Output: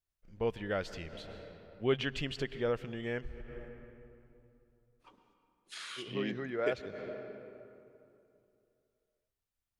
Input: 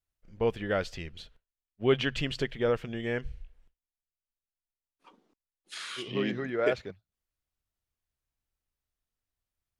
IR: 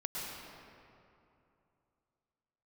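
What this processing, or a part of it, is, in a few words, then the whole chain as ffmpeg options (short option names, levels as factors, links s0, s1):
ducked reverb: -filter_complex "[0:a]asplit=3[s0][s1][s2];[1:a]atrim=start_sample=2205[s3];[s1][s3]afir=irnorm=-1:irlink=0[s4];[s2]apad=whole_len=432037[s5];[s4][s5]sidechaincompress=threshold=0.00447:ratio=10:attack=16:release=109,volume=0.473[s6];[s0][s6]amix=inputs=2:normalize=0,volume=0.531"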